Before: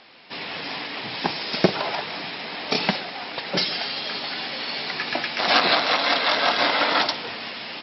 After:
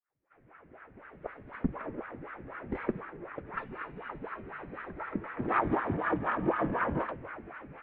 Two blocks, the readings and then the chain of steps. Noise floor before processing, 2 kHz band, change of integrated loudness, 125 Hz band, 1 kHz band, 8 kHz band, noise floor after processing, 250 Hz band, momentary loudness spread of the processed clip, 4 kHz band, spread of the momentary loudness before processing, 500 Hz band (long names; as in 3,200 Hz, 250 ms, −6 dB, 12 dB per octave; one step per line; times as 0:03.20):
−35 dBFS, −14.5 dB, −12.0 dB, −3.5 dB, −9.5 dB, can't be measured, −63 dBFS, −4.0 dB, 15 LU, −39.0 dB, 12 LU, −9.0 dB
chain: fade in at the beginning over 2.52 s
LFO wah 4 Hz 480–1,800 Hz, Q 4.8
single-sideband voice off tune −380 Hz 250–2,700 Hz